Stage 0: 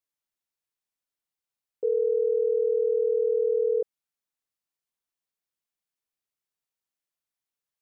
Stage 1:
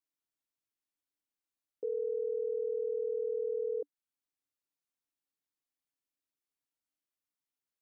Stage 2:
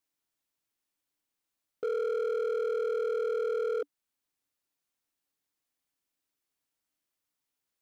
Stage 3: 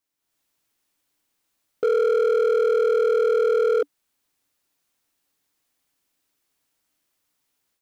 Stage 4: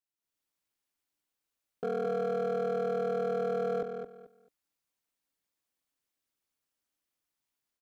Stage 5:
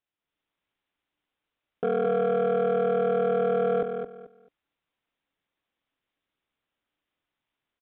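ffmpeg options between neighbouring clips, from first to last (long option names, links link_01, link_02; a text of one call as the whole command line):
ffmpeg -i in.wav -af "equalizer=frequency=290:width_type=o:width=0.31:gain=11.5,alimiter=limit=-22.5dB:level=0:latency=1:release=399,volume=-5.5dB" out.wav
ffmpeg -i in.wav -af "volume=34dB,asoftclip=hard,volume=-34dB,volume=6.5dB" out.wav
ffmpeg -i in.wav -af "dynaudnorm=framelen=180:gausssize=3:maxgain=9.5dB,volume=1.5dB" out.wav
ffmpeg -i in.wav -filter_complex "[0:a]tremolo=f=250:d=0.824,asplit=2[link_01][link_02];[link_02]adelay=219,lowpass=frequency=4900:poles=1,volume=-6.5dB,asplit=2[link_03][link_04];[link_04]adelay=219,lowpass=frequency=4900:poles=1,volume=0.23,asplit=2[link_05][link_06];[link_06]adelay=219,lowpass=frequency=4900:poles=1,volume=0.23[link_07];[link_01][link_03][link_05][link_07]amix=inputs=4:normalize=0,volume=-9dB" out.wav
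ffmpeg -i in.wav -af "aresample=8000,aresample=44100,volume=7dB" out.wav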